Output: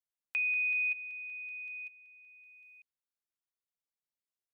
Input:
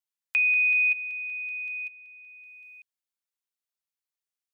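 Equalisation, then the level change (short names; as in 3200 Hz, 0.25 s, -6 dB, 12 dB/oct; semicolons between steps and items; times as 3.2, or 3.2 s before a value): tilt shelf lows +3 dB; -6.5 dB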